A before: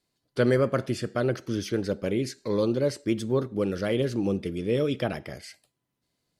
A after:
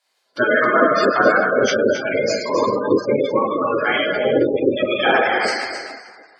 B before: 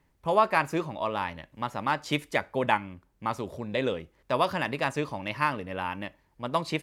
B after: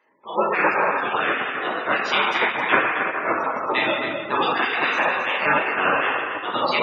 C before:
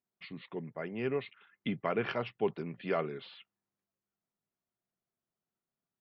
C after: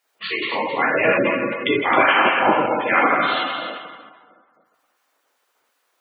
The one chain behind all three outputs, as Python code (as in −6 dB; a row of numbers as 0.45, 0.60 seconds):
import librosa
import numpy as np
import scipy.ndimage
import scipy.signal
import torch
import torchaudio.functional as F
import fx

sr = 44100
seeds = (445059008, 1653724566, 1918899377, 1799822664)

p1 = fx.notch(x, sr, hz=710.0, q=14.0)
p2 = fx.rev_plate(p1, sr, seeds[0], rt60_s=1.7, hf_ratio=0.7, predelay_ms=0, drr_db=-6.5)
p3 = fx.rider(p2, sr, range_db=4, speed_s=0.5)
p4 = fx.spec_gate(p3, sr, threshold_db=-25, keep='strong')
p5 = fx.high_shelf(p4, sr, hz=3500.0, db=-7.5)
p6 = p5 + fx.echo_single(p5, sr, ms=267, db=-9.0, dry=0)
p7 = fx.spec_gate(p6, sr, threshold_db=-10, keep='weak')
p8 = scipy.signal.sosfilt(scipy.signal.butter(2, 330.0, 'highpass', fs=sr, output='sos'), p7)
y = librosa.util.normalize(p8) * 10.0 ** (-1.5 / 20.0)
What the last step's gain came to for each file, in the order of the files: +15.0, +9.0, +21.0 decibels